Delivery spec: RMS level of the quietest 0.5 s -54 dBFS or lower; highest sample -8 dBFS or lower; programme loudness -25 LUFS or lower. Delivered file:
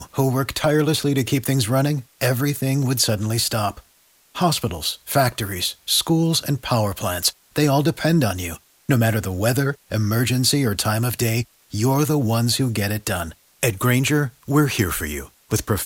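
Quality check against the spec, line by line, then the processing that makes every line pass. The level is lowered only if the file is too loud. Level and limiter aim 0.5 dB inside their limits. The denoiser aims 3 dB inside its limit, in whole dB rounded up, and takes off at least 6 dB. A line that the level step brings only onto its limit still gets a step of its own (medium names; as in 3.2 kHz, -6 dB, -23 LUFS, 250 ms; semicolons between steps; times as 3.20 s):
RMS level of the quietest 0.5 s -57 dBFS: pass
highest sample -5.0 dBFS: fail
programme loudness -20.5 LUFS: fail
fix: trim -5 dB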